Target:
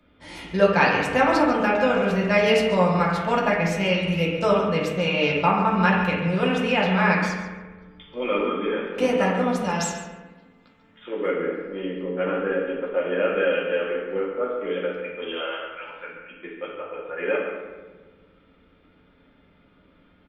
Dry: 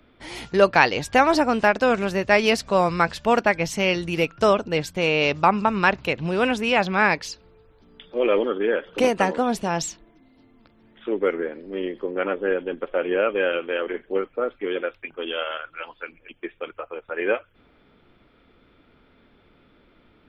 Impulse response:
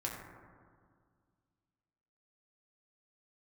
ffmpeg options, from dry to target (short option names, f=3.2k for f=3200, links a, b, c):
-filter_complex "[0:a]asettb=1/sr,asplit=3[a][b][c];[a]atrim=end=7.204[d];[b]atrim=start=7.2:end=8.86,asetpts=PTS-STARTPTS,afade=t=in:d=0.004:c=qsin,afade=t=out:st=1.656:d=0.004:c=qsin,aecho=1:1:0.9:0.46,atrim=end_sample=73206[e];[c]atrim=start=8.856[f];[d][e]acrossfade=d=0.004:c1=hsin:c2=qsin[g];[g][f]acrossfade=d=0.004:c1=qsin:c2=hsin,asettb=1/sr,asplit=3[h][i][j];[h]atrim=end=9.644[k];[i]atrim=start=9.64:end=11.26,asetpts=PTS-STARTPTS,afade=t=in:d=0.004:c=qsin,afade=t=out:st=1.616:d=0.004:c=qsin,tiltshelf=f=660:g=-5[l];[j]atrim=start=11.256[m];[k][l]acrossfade=d=0.004:c1=hsin:c2=qsin[n];[n][m]acrossfade=d=0.004:c1=qsin:c2=hsin,asplit=2[o][p];[p]adelay=141,lowpass=f=4.8k:p=1,volume=-10dB,asplit=2[q][r];[r]adelay=141,lowpass=f=4.8k:p=1,volume=0.19,asplit=2[s][t];[t]adelay=141,lowpass=f=4.8k:p=1,volume=0.19[u];[o][q][s][u]amix=inputs=4:normalize=0[v];[1:a]atrim=start_sample=2205,asetrate=70560,aresample=44100[w];[v][w]afir=irnorm=-1:irlink=0"